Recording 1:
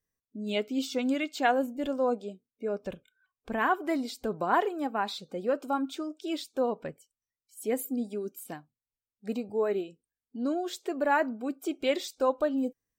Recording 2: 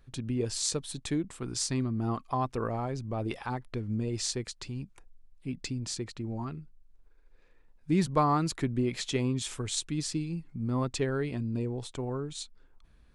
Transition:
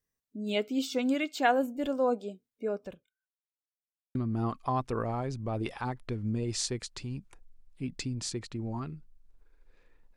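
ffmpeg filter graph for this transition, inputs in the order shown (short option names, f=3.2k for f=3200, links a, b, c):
-filter_complex "[0:a]apad=whole_dur=10.16,atrim=end=10.16,asplit=2[a][b];[a]atrim=end=3.4,asetpts=PTS-STARTPTS,afade=t=out:st=2.68:d=0.72:c=qua[c];[b]atrim=start=3.4:end=4.15,asetpts=PTS-STARTPTS,volume=0[d];[1:a]atrim=start=1.8:end=7.81,asetpts=PTS-STARTPTS,afade=t=in:d=0.004:c=hsin[e];[c][d][e]concat=n=3:v=0:a=1"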